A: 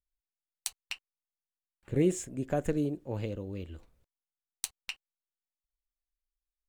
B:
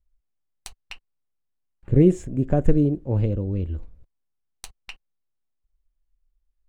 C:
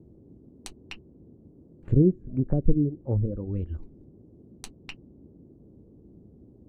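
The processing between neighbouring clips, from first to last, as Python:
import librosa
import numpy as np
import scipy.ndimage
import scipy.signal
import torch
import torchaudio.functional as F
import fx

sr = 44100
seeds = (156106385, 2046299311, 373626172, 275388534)

y1 = fx.tilt_eq(x, sr, slope=-3.5)
y1 = F.gain(torch.from_numpy(y1), 4.0).numpy()
y2 = fx.dereverb_blind(y1, sr, rt60_s=0.76)
y2 = fx.dmg_noise_band(y2, sr, seeds[0], low_hz=48.0, high_hz=360.0, level_db=-50.0)
y2 = fx.env_lowpass_down(y2, sr, base_hz=380.0, full_db=-18.5)
y2 = F.gain(torch.from_numpy(y2), -2.0).numpy()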